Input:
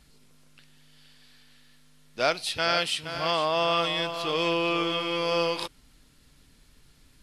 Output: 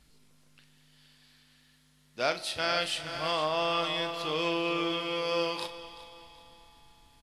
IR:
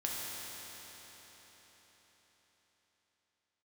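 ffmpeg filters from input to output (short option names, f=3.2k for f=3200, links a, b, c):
-filter_complex "[0:a]asplit=2[a][b];[b]adelay=39,volume=-11dB[c];[a][c]amix=inputs=2:normalize=0,aecho=1:1:379|758|1137:0.141|0.0523|0.0193,asplit=2[d][e];[1:a]atrim=start_sample=2205[f];[e][f]afir=irnorm=-1:irlink=0,volume=-16dB[g];[d][g]amix=inputs=2:normalize=0,volume=-5.5dB"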